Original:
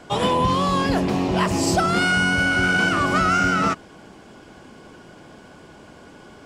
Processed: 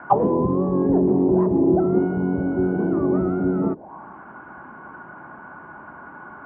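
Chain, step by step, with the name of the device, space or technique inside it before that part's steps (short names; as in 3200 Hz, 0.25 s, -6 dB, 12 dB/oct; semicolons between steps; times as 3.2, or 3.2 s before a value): envelope filter bass rig (envelope low-pass 410–1500 Hz down, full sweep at -18 dBFS; speaker cabinet 69–2400 Hz, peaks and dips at 100 Hz -7 dB, 470 Hz -8 dB, 920 Hz +8 dB)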